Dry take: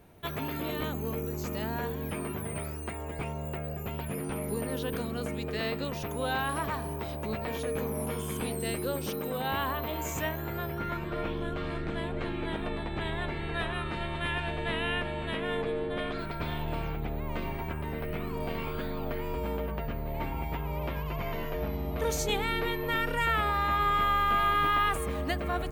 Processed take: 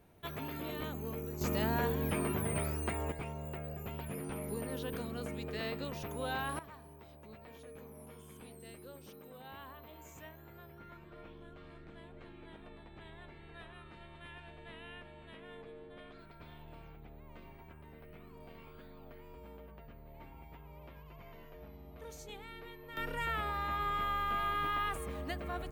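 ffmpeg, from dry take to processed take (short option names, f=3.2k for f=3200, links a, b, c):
-af "asetnsamples=n=441:p=0,asendcmd='1.41 volume volume 1dB;3.12 volume volume -6.5dB;6.59 volume volume -19dB;22.97 volume volume -8.5dB',volume=-7dB"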